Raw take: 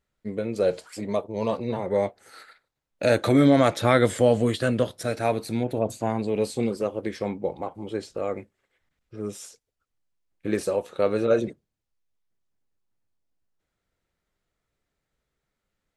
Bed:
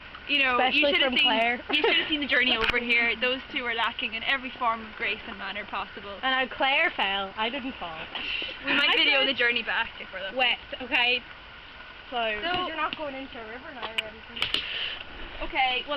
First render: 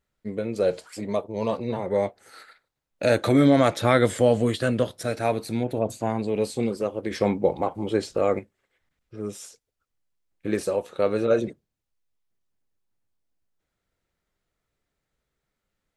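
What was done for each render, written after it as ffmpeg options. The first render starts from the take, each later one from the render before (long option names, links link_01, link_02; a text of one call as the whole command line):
ffmpeg -i in.wav -filter_complex "[0:a]asplit=3[link_01][link_02][link_03];[link_01]atrim=end=7.112[link_04];[link_02]atrim=start=7.108:end=8.392,asetpts=PTS-STARTPTS,volume=6.5dB[link_05];[link_03]atrim=start=8.388[link_06];[link_04][link_05]acrossfade=duration=0.004:curve1=hsin:curve2=hsin[link_07];[link_07][link_06]acrossfade=duration=0.004:curve1=hsin:curve2=hsin" out.wav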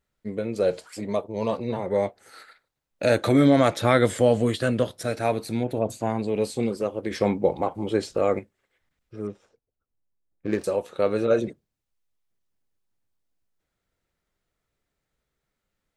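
ffmpeg -i in.wav -filter_complex "[0:a]asettb=1/sr,asplit=3[link_01][link_02][link_03];[link_01]atrim=end=9.274[link_04];[link_02]atrim=start=9.27:end=10.64,asetpts=PTS-STARTPTS,afade=type=in:duration=0.004:curve=qsin,afade=type=out:start_time=1.366:duration=0.004:curve=qsin,adynamicsmooth=sensitivity=5:basefreq=1000[link_05];[link_03]atrim=start=10.636[link_06];[link_04][link_05]acrossfade=duration=0.004:curve1=hsin:curve2=qsin[link_07];[link_07][link_06]acrossfade=duration=0.004:curve1=qsin:curve2=hsin" out.wav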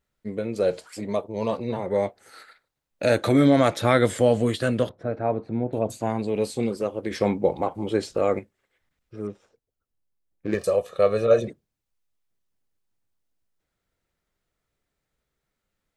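ffmpeg -i in.wav -filter_complex "[0:a]asettb=1/sr,asplit=3[link_01][link_02][link_03];[link_01]atrim=end=4.894[link_04];[link_02]atrim=start=4.89:end=5.73,asetpts=PTS-STARTPTS,afade=type=in:duration=0.004:curve=qsin,afade=type=out:start_time=0.836:duration=0.004:curve=qsin,lowpass=1100[link_05];[link_03]atrim=start=5.726[link_06];[link_04][link_05]acrossfade=duration=0.004:curve1=hsin:curve2=qsin[link_07];[link_07][link_06]acrossfade=duration=0.004:curve1=qsin:curve2=hsin,asettb=1/sr,asplit=3[link_08][link_09][link_10];[link_08]atrim=end=10.544[link_11];[link_09]atrim=start=10.54:end=11.48,asetpts=PTS-STARTPTS,afade=type=in:duration=0.004:curve=qsin,afade=type=out:start_time=0.936:duration=0.004:curve=qsin,aecho=1:1:1.7:0.7,atrim=end_sample=41454[link_12];[link_10]atrim=start=11.476[link_13];[link_11][link_12]acrossfade=duration=0.004:curve1=hsin:curve2=qsin[link_14];[link_14][link_13]acrossfade=duration=0.004:curve1=qsin:curve2=hsin" out.wav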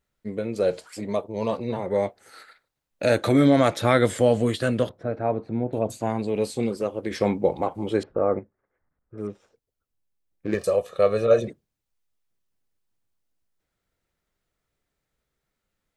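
ffmpeg -i in.wav -filter_complex "[0:a]asettb=1/sr,asplit=3[link_01][link_02][link_03];[link_01]atrim=end=8.034[link_04];[link_02]atrim=start=8.03:end=9.18,asetpts=PTS-STARTPTS,afade=type=in:duration=0.004:curve=qsin,afade=type=out:start_time=1.146:duration=0.004:curve=qsin,lowpass=frequency=1500:width=0.5412,lowpass=frequency=1500:width=1.3066[link_05];[link_03]atrim=start=9.176[link_06];[link_04][link_05]acrossfade=duration=0.004:curve1=hsin:curve2=qsin[link_07];[link_07][link_06]acrossfade=duration=0.004:curve1=qsin:curve2=hsin" out.wav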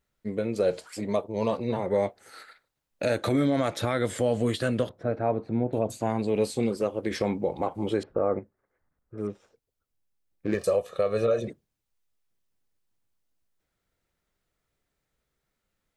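ffmpeg -i in.wav -af "alimiter=limit=-15dB:level=0:latency=1:release=197" out.wav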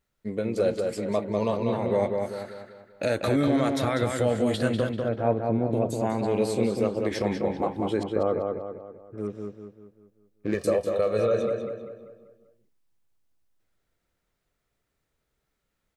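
ffmpeg -i in.wav -filter_complex "[0:a]asplit=2[link_01][link_02];[link_02]adelay=195,lowpass=frequency=3300:poles=1,volume=-4dB,asplit=2[link_03][link_04];[link_04]adelay=195,lowpass=frequency=3300:poles=1,volume=0.46,asplit=2[link_05][link_06];[link_06]adelay=195,lowpass=frequency=3300:poles=1,volume=0.46,asplit=2[link_07][link_08];[link_08]adelay=195,lowpass=frequency=3300:poles=1,volume=0.46,asplit=2[link_09][link_10];[link_10]adelay=195,lowpass=frequency=3300:poles=1,volume=0.46,asplit=2[link_11][link_12];[link_12]adelay=195,lowpass=frequency=3300:poles=1,volume=0.46[link_13];[link_01][link_03][link_05][link_07][link_09][link_11][link_13]amix=inputs=7:normalize=0" out.wav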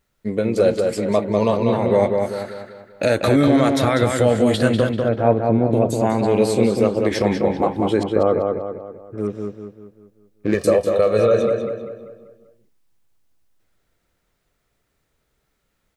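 ffmpeg -i in.wav -af "volume=8dB" out.wav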